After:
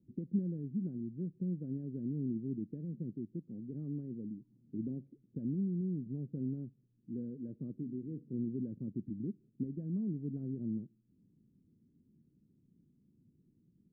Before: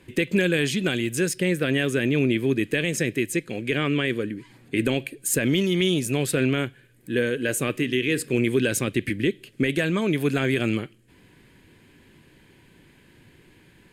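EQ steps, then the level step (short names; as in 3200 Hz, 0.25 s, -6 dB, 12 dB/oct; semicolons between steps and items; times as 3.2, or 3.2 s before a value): ladder low-pass 250 Hz, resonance 45%; tilt +3 dB/oct; +1.0 dB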